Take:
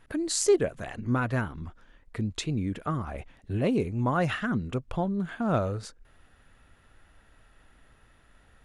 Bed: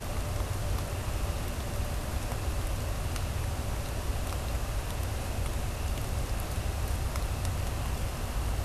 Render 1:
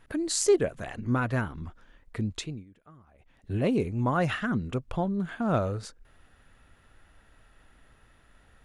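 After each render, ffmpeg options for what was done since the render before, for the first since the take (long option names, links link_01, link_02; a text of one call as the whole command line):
ffmpeg -i in.wav -filter_complex "[0:a]asplit=3[link_01][link_02][link_03];[link_01]atrim=end=2.65,asetpts=PTS-STARTPTS,afade=type=out:start_time=2.31:duration=0.34:silence=0.0668344[link_04];[link_02]atrim=start=2.65:end=3.19,asetpts=PTS-STARTPTS,volume=-23.5dB[link_05];[link_03]atrim=start=3.19,asetpts=PTS-STARTPTS,afade=type=in:duration=0.34:silence=0.0668344[link_06];[link_04][link_05][link_06]concat=n=3:v=0:a=1" out.wav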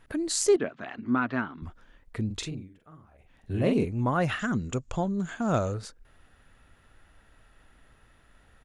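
ffmpeg -i in.wav -filter_complex "[0:a]asettb=1/sr,asplit=3[link_01][link_02][link_03];[link_01]atrim=end=0.564[link_04];[link_02]atrim=start=0.56:end=1.62,asetpts=PTS-STARTPTS,afade=type=in:duration=0.004:curve=qsin,afade=type=out:start_time=1.056:duration=0.004:curve=qsin,highpass=230,equalizer=frequency=250:width_type=q:width=4:gain=6,equalizer=frequency=510:width_type=q:width=4:gain=-8,equalizer=frequency=1300:width_type=q:width=4:gain=4,lowpass=frequency=4400:width=0.5412,lowpass=frequency=4400:width=1.3066[link_05];[link_03]atrim=start=1.616[link_06];[link_04][link_05]acrossfade=duration=0.004:curve1=hsin:curve2=qsin[link_07];[link_07][link_06]acrossfade=duration=0.004:curve1=qsin:curve2=hsin,asplit=3[link_08][link_09][link_10];[link_08]afade=type=out:start_time=2.29:duration=0.02[link_11];[link_09]asplit=2[link_12][link_13];[link_13]adelay=44,volume=-4.5dB[link_14];[link_12][link_14]amix=inputs=2:normalize=0,afade=type=in:start_time=2.29:duration=0.02,afade=type=out:start_time=3.84:duration=0.02[link_15];[link_10]afade=type=in:start_time=3.84:duration=0.02[link_16];[link_11][link_15][link_16]amix=inputs=3:normalize=0,asettb=1/sr,asplit=3[link_17][link_18][link_19];[link_17]atrim=end=4.394[link_20];[link_18]atrim=start=4.39:end=5.74,asetpts=PTS-STARTPTS,afade=type=in:duration=0.004:curve=qsin,afade=type=out:start_time=1.346:duration=0.004:curve=qsin,lowpass=frequency=7000:width_type=q:width=8.1[link_21];[link_19]atrim=start=5.736[link_22];[link_20][link_21]acrossfade=duration=0.004:curve1=hsin:curve2=qsin[link_23];[link_23][link_22]acrossfade=duration=0.004:curve1=qsin:curve2=hsin" out.wav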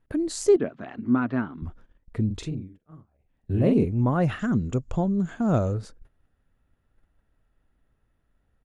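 ffmpeg -i in.wav -af "agate=range=-15dB:threshold=-51dB:ratio=16:detection=peak,tiltshelf=frequency=760:gain=6" out.wav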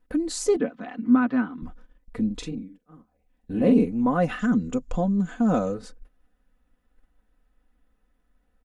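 ffmpeg -i in.wav -af "equalizer=frequency=92:width_type=o:width=0.64:gain=-14,aecho=1:1:4:0.75" out.wav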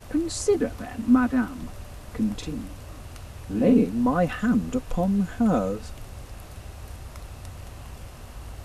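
ffmpeg -i in.wav -i bed.wav -filter_complex "[1:a]volume=-8dB[link_01];[0:a][link_01]amix=inputs=2:normalize=0" out.wav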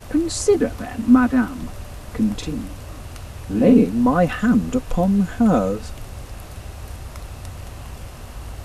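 ffmpeg -i in.wav -af "volume=5.5dB" out.wav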